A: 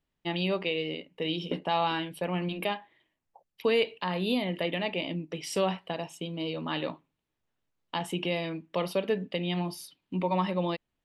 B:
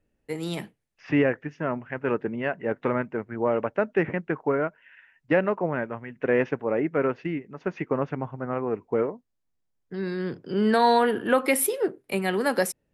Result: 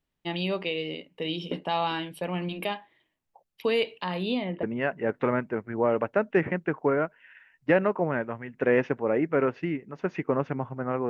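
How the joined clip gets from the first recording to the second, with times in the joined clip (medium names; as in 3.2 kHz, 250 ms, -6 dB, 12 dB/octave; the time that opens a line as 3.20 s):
A
4.22–4.63 s: low-pass 6.7 kHz -> 1.1 kHz
4.63 s: go over to B from 2.25 s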